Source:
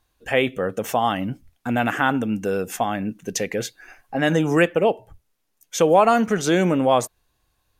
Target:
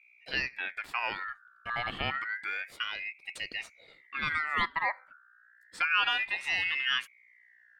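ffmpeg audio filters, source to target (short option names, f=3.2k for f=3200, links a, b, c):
-af "lowpass=f=2.2k:p=1,aeval=exprs='val(0)+0.00398*(sin(2*PI*60*n/s)+sin(2*PI*2*60*n/s)/2+sin(2*PI*3*60*n/s)/3+sin(2*PI*4*60*n/s)/4+sin(2*PI*5*60*n/s)/5)':c=same,aeval=exprs='val(0)*sin(2*PI*1900*n/s+1900*0.25/0.3*sin(2*PI*0.3*n/s))':c=same,volume=-9dB"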